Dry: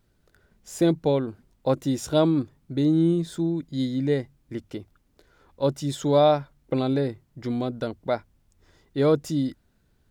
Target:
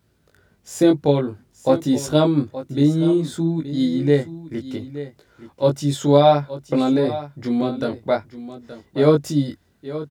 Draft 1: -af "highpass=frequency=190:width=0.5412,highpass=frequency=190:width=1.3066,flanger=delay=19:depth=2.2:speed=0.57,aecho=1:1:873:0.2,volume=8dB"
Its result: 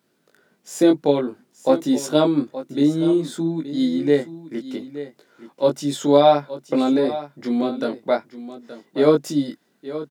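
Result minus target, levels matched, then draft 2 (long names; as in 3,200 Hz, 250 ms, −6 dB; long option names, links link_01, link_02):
125 Hz band −8.5 dB
-af "highpass=frequency=60:width=0.5412,highpass=frequency=60:width=1.3066,flanger=delay=19:depth=2.2:speed=0.57,aecho=1:1:873:0.2,volume=8dB"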